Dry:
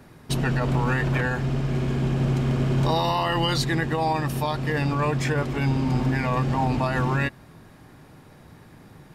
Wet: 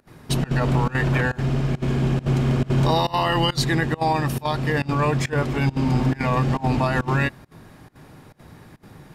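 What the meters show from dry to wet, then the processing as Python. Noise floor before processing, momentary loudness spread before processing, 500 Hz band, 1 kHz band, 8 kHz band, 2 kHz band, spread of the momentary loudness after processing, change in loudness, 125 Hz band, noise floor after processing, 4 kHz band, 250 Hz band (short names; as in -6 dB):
-50 dBFS, 3 LU, +2.0 dB, +2.0 dB, +2.5 dB, +2.0 dB, 3 LU, +2.0 dB, +2.0 dB, -48 dBFS, +2.5 dB, +2.0 dB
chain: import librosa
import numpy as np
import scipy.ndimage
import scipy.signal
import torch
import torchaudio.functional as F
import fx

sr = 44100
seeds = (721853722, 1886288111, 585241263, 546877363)

y = fx.volume_shaper(x, sr, bpm=137, per_beat=1, depth_db=-23, release_ms=69.0, shape='slow start')
y = y * librosa.db_to_amplitude(3.0)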